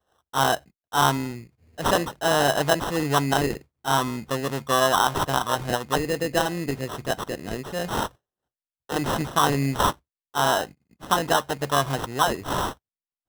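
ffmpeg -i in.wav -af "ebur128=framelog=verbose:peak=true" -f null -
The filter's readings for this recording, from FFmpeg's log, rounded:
Integrated loudness:
  I:         -24.4 LUFS
  Threshold: -34.7 LUFS
Loudness range:
  LRA:         4.7 LU
  Threshold: -44.8 LUFS
  LRA low:   -27.9 LUFS
  LRA high:  -23.2 LUFS
True peak:
  Peak:       -6.0 dBFS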